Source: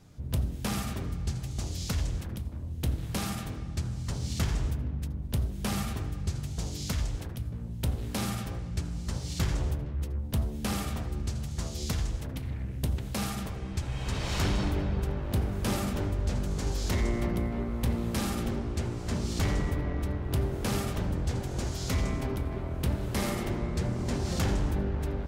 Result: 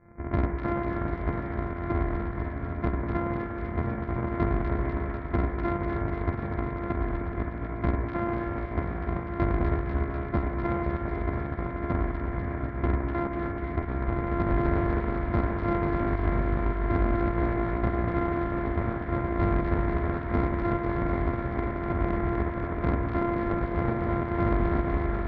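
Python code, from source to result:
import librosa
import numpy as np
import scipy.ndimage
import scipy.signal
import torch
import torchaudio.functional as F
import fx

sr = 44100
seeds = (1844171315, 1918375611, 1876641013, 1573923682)

p1 = np.r_[np.sort(x[:len(x) // 128 * 128].reshape(-1, 128), axis=1).ravel(), x[len(x) // 128 * 128:]]
p2 = scipy.signal.sosfilt(scipy.signal.cheby1(10, 1.0, 2300.0, 'lowpass', fs=sr, output='sos'), p1)
p3 = fx.rev_schroeder(p2, sr, rt60_s=3.4, comb_ms=32, drr_db=4.5)
p4 = fx.volume_shaper(p3, sr, bpm=104, per_beat=1, depth_db=-17, release_ms=145.0, shape='fast start')
p5 = p3 + F.gain(torch.from_numpy(p4), 1.5).numpy()
p6 = fx.cheby_harmonics(p5, sr, harmonics=(6,), levels_db=(-26,), full_scale_db=-9.0)
p7 = p6 + fx.echo_wet_highpass(p6, sr, ms=247, feedback_pct=76, hz=1600.0, wet_db=-3.0, dry=0)
y = F.gain(torch.from_numpy(p7), -4.0).numpy()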